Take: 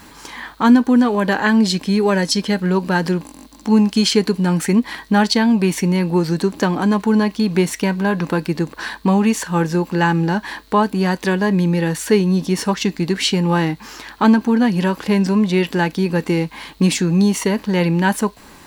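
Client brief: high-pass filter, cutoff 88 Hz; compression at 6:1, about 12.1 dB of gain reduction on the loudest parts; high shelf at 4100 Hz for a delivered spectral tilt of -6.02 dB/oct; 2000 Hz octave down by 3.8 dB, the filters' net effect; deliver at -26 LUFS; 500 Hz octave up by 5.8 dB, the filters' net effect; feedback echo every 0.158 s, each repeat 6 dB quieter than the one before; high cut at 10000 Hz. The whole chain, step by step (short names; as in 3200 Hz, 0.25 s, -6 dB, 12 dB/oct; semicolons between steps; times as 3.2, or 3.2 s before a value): HPF 88 Hz; LPF 10000 Hz; bell 500 Hz +8 dB; bell 2000 Hz -4.5 dB; high shelf 4100 Hz -5.5 dB; compressor 6:1, threshold -18 dBFS; feedback echo 0.158 s, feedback 50%, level -6 dB; gain -4.5 dB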